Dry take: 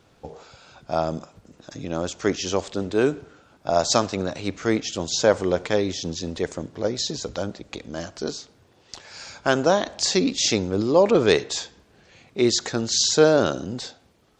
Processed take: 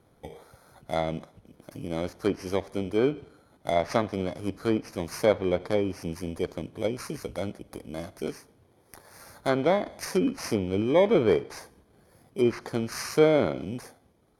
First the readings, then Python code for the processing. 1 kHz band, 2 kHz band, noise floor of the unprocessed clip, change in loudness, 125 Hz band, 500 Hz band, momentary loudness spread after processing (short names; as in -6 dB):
-5.5 dB, -6.5 dB, -58 dBFS, -5.0 dB, -3.0 dB, -4.0 dB, 17 LU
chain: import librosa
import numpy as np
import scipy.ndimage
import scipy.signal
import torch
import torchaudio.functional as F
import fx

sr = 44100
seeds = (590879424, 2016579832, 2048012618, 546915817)

y = fx.bit_reversed(x, sr, seeds[0], block=16)
y = fx.high_shelf(y, sr, hz=3300.0, db=-9.0)
y = fx.env_lowpass_down(y, sr, base_hz=2900.0, full_db=-17.5)
y = y * 10.0 ** (-3.0 / 20.0)